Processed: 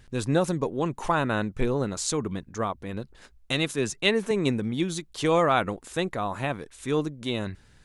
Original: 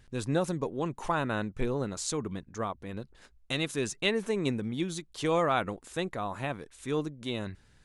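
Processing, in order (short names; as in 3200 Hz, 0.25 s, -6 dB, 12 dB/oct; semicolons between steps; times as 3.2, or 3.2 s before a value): 3.73–4.31 three-band expander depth 40%; gain +5 dB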